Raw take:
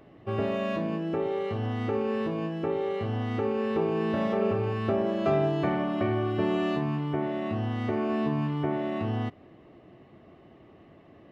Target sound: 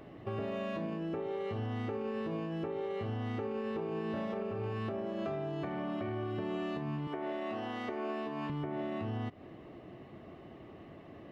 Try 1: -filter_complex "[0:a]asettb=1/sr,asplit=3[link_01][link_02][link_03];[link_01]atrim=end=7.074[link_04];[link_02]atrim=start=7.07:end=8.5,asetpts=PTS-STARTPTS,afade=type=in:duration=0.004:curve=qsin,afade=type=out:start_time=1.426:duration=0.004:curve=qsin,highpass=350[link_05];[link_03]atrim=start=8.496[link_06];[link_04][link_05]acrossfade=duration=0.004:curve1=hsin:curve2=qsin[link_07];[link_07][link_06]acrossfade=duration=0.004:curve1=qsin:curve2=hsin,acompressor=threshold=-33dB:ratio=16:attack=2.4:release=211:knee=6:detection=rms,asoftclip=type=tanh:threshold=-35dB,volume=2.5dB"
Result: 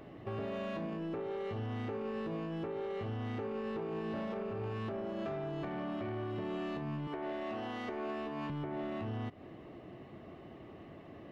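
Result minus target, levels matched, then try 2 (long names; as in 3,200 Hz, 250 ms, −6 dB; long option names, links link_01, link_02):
soft clipping: distortion +12 dB
-filter_complex "[0:a]asettb=1/sr,asplit=3[link_01][link_02][link_03];[link_01]atrim=end=7.074[link_04];[link_02]atrim=start=7.07:end=8.5,asetpts=PTS-STARTPTS,afade=type=in:duration=0.004:curve=qsin,afade=type=out:start_time=1.426:duration=0.004:curve=qsin,highpass=350[link_05];[link_03]atrim=start=8.496[link_06];[link_04][link_05]acrossfade=duration=0.004:curve1=hsin:curve2=qsin[link_07];[link_07][link_06]acrossfade=duration=0.004:curve1=qsin:curve2=hsin,acompressor=threshold=-33dB:ratio=16:attack=2.4:release=211:knee=6:detection=rms,asoftclip=type=tanh:threshold=-27.5dB,volume=2.5dB"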